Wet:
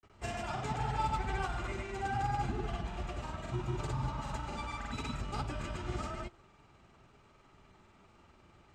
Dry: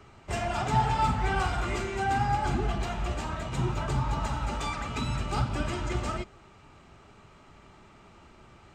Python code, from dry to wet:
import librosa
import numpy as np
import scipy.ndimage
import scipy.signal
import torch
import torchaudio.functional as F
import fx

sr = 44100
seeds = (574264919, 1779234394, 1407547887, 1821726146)

y = fx.granulator(x, sr, seeds[0], grain_ms=100.0, per_s=20.0, spray_ms=100.0, spread_st=0)
y = F.gain(torch.from_numpy(y), -6.5).numpy()